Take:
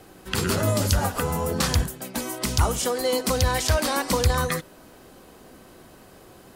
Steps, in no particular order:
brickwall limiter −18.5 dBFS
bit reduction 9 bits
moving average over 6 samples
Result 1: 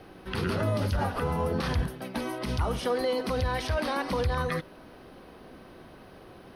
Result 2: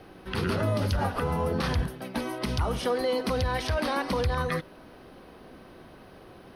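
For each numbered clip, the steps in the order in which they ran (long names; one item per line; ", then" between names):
bit reduction, then brickwall limiter, then moving average
bit reduction, then moving average, then brickwall limiter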